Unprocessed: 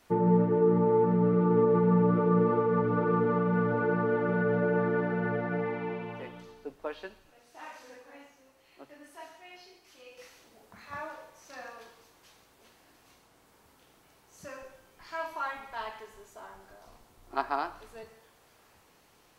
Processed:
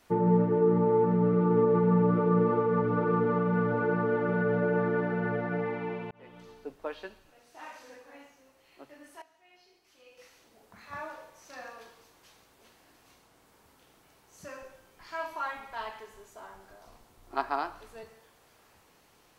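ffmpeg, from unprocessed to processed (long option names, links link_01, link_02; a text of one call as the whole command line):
ffmpeg -i in.wav -filter_complex "[0:a]asplit=3[link_01][link_02][link_03];[link_01]atrim=end=6.11,asetpts=PTS-STARTPTS,afade=type=out:start_time=6.106:duration=0.004:curve=hsin[link_04];[link_02]atrim=start=6.11:end=9.22,asetpts=PTS-STARTPTS,afade=type=in:duration=0.41,afade=type=out:start_time=3.106:duration=0.004:curve=hsin:silence=0.16788[link_05];[link_03]atrim=start=9.22,asetpts=PTS-STARTPTS,afade=type=in:duration=1.88:silence=0.16788[link_06];[link_04][link_05][link_06]concat=n=3:v=0:a=1" out.wav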